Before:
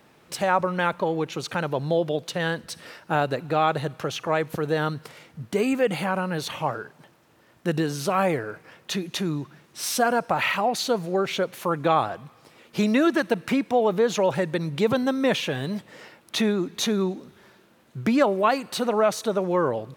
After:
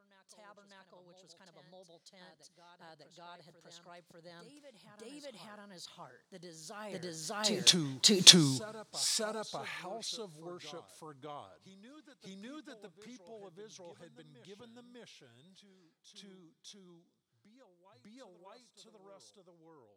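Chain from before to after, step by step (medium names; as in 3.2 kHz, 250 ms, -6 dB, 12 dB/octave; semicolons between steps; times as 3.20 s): Doppler pass-by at 8.25 s, 33 m/s, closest 1.8 m; high-order bell 5.9 kHz +11.5 dB; reverse echo 600 ms -7.5 dB; trim +8 dB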